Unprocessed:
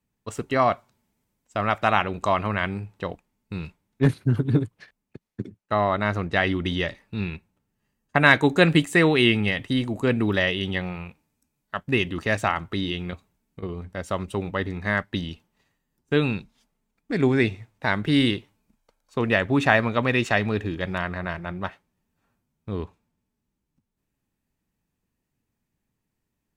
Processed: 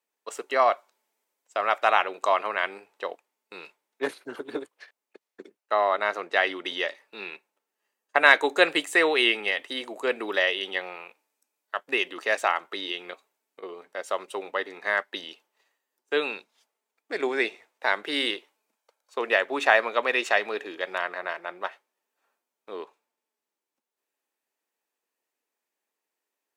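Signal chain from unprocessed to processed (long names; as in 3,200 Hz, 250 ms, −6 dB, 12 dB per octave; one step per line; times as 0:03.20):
high-pass filter 420 Hz 24 dB per octave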